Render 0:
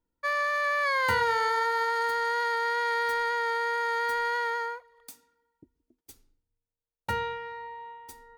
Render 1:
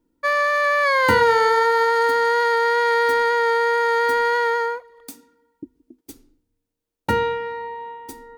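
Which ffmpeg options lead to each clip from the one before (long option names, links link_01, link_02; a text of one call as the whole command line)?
ffmpeg -i in.wav -af "equalizer=frequency=290:width=1.2:gain=14.5,volume=7dB" out.wav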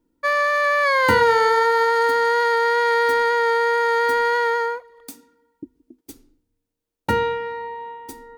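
ffmpeg -i in.wav -af anull out.wav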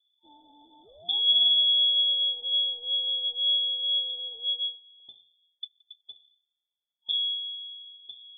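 ffmpeg -i in.wav -af "highpass=frequency=370:width_type=q:width=3.5,afftfilt=real='re*(1-between(b*sr/4096,470,2900))':imag='im*(1-between(b*sr/4096,470,2900))':win_size=4096:overlap=0.75,lowpass=frequency=3200:width_type=q:width=0.5098,lowpass=frequency=3200:width_type=q:width=0.6013,lowpass=frequency=3200:width_type=q:width=0.9,lowpass=frequency=3200:width_type=q:width=2.563,afreqshift=-3800,volume=-8dB" out.wav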